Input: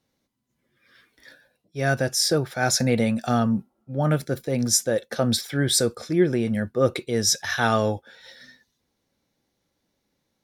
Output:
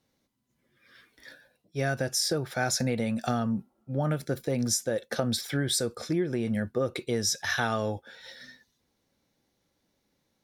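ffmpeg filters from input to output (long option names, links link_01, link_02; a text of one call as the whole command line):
ffmpeg -i in.wav -af "acompressor=threshold=-24dB:ratio=10" out.wav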